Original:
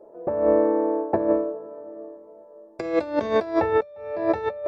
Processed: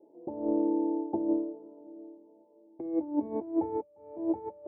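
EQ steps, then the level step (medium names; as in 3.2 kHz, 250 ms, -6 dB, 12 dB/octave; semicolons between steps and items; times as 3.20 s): cascade formant filter u; high-pass 42 Hz; treble shelf 2.7 kHz +10 dB; 0.0 dB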